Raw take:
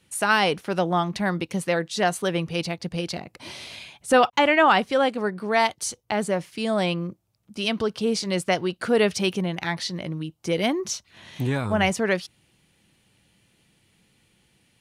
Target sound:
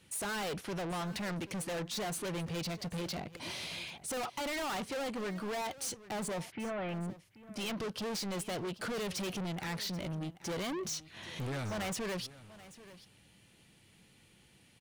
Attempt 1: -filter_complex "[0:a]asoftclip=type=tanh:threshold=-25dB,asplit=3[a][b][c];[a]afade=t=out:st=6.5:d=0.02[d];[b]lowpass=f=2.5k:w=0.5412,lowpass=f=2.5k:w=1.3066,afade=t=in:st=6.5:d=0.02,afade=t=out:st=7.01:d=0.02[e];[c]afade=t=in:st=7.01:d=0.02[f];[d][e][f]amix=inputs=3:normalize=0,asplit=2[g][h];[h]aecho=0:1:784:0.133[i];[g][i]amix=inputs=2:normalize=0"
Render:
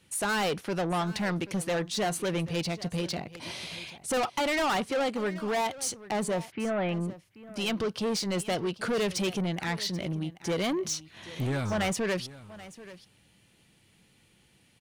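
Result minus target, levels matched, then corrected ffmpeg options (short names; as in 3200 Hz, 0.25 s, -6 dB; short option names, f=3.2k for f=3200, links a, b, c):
soft clip: distortion -4 dB
-filter_complex "[0:a]asoftclip=type=tanh:threshold=-35.5dB,asplit=3[a][b][c];[a]afade=t=out:st=6.5:d=0.02[d];[b]lowpass=f=2.5k:w=0.5412,lowpass=f=2.5k:w=1.3066,afade=t=in:st=6.5:d=0.02,afade=t=out:st=7.01:d=0.02[e];[c]afade=t=in:st=7.01:d=0.02[f];[d][e][f]amix=inputs=3:normalize=0,asplit=2[g][h];[h]aecho=0:1:784:0.133[i];[g][i]amix=inputs=2:normalize=0"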